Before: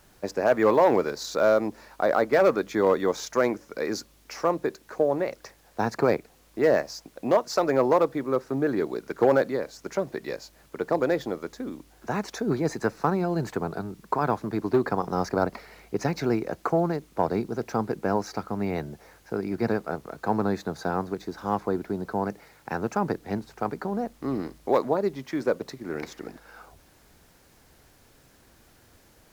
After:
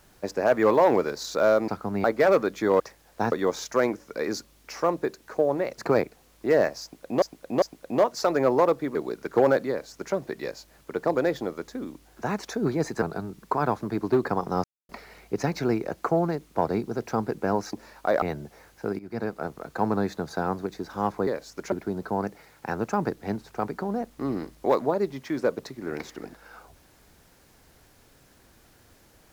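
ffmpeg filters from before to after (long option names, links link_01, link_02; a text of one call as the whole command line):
ffmpeg -i in.wav -filter_complex "[0:a]asplit=17[link_01][link_02][link_03][link_04][link_05][link_06][link_07][link_08][link_09][link_10][link_11][link_12][link_13][link_14][link_15][link_16][link_17];[link_01]atrim=end=1.682[link_18];[link_02]atrim=start=18.338:end=18.702[link_19];[link_03]atrim=start=2.168:end=2.932[link_20];[link_04]atrim=start=5.388:end=5.912[link_21];[link_05]atrim=start=2.928:end=5.392[link_22];[link_06]atrim=start=5.908:end=7.352[link_23];[link_07]atrim=start=6.948:end=7.352[link_24];[link_08]atrim=start=6.948:end=8.282[link_25];[link_09]atrim=start=8.798:end=12.872[link_26];[link_10]atrim=start=13.628:end=15.25,asetpts=PTS-STARTPTS,afade=type=out:start_time=1.618:duration=0.004:curve=hsin[link_27];[link_11]atrim=start=15.25:end=15.5,asetpts=PTS-STARTPTS,volume=0[link_28];[link_12]atrim=start=15.5:end=18.342,asetpts=PTS-STARTPTS,afade=type=in:duration=0.004:curve=hsin[link_29];[link_13]atrim=start=1.678:end=2.172[link_30];[link_14]atrim=start=18.698:end=19.47,asetpts=PTS-STARTPTS,afade=type=out:start_time=0.768:duration=0.004:curve=hsin:silence=0.141254[link_31];[link_15]atrim=start=19.47:end=21.752,asetpts=PTS-STARTPTS,afade=type=in:duration=0.7:curve=qsin:silence=0.141254[link_32];[link_16]atrim=start=9.538:end=9.992[link_33];[link_17]atrim=start=21.748[link_34];[link_18][link_19]acrossfade=duration=0.004:curve1=hsin:curve2=hsin[link_35];[link_35][link_20]acrossfade=duration=0.004:curve1=hsin:curve2=hsin[link_36];[link_36][link_21]acrossfade=duration=0.004:curve1=hsin:curve2=hsin[link_37];[link_37][link_22]acrossfade=duration=0.004:curve1=hsin:curve2=hsin[link_38];[link_38][link_23]acrossfade=duration=0.004:curve1=hsin:curve2=hsin[link_39];[link_39][link_24]acrossfade=duration=0.004:curve1=hsin:curve2=hsin[link_40];[link_40][link_25]acrossfade=duration=0.004:curve1=hsin:curve2=hsin[link_41];[link_41][link_26]acrossfade=duration=0.004:curve1=hsin:curve2=hsin[link_42];[link_27][link_28][link_29]concat=n=3:v=0:a=1[link_43];[link_42][link_43]acrossfade=duration=0.004:curve1=hsin:curve2=hsin[link_44];[link_44][link_30]acrossfade=duration=0.004:curve1=hsin:curve2=hsin[link_45];[link_31][link_32]concat=n=2:v=0:a=1[link_46];[link_45][link_46]acrossfade=duration=0.004:curve1=hsin:curve2=hsin[link_47];[link_47][link_33]acrossfade=duration=0.004:curve1=hsin:curve2=hsin[link_48];[link_48][link_34]acrossfade=duration=0.004:curve1=hsin:curve2=hsin" out.wav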